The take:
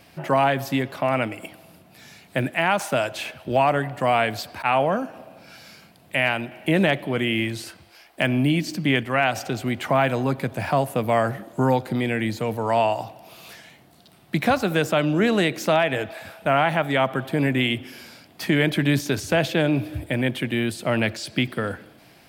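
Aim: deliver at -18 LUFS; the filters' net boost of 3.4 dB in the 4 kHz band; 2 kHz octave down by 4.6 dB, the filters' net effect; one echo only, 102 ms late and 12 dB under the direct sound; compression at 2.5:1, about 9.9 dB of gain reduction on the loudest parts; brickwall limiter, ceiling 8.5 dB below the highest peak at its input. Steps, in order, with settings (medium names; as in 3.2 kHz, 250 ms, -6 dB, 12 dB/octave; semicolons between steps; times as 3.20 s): peaking EQ 2 kHz -8.5 dB; peaking EQ 4 kHz +8.5 dB; compression 2.5:1, threshold -31 dBFS; peak limiter -22.5 dBFS; delay 102 ms -12 dB; trim +15.5 dB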